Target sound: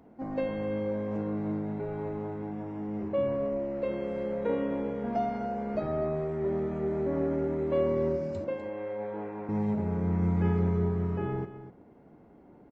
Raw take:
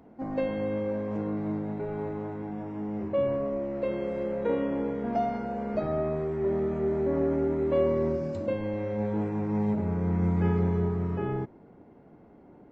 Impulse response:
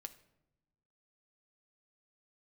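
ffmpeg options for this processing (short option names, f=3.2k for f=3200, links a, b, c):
-filter_complex "[0:a]asettb=1/sr,asplit=3[a][b][c];[a]atrim=end=8.444[d];[b]atrim=start=8.44:end=9.49,asetpts=PTS-STARTPTS,afade=t=in:d=0.004:c=qsin,afade=t=out:st=1.046:d=0.004:c=qsin,acrossover=split=330 3200:gain=0.141 1 0.178[e][f][g];[e][f][g]amix=inputs=3:normalize=0[h];[c]atrim=start=9.486[i];[d][h]acrossfade=d=0.004:c1=hsin:c2=qsin[j];[j][i]acrossfade=d=0.004:c1=qsin:c2=hsin,aecho=1:1:249:0.224,volume=-2dB"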